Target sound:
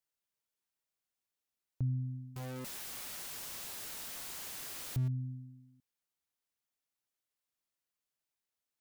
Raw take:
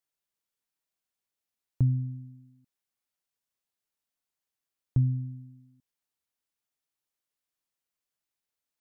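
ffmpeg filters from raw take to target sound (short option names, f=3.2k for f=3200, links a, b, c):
-filter_complex "[0:a]asettb=1/sr,asplit=3[a][b][c];[a]atrim=end=2.364[d];[b]atrim=start=2.36:end=5.08,asetpts=PTS-STARTPTS,afade=t=in:d=0.004:c=qsin,afade=t=out:st=2.716:d=0.004:c=qsin,aeval=exprs='val(0)+0.5*0.02*sgn(val(0))':c=same[e];[c]atrim=start=5.076[f];[d][e]acrossfade=d=0.004:c1=hsin:c2=qsin[g];[g][f]acrossfade=d=0.004:c1=qsin:c2=hsin,alimiter=level_in=0.5dB:limit=-24dB:level=0:latency=1:release=346,volume=-0.5dB,volume=-2.5dB"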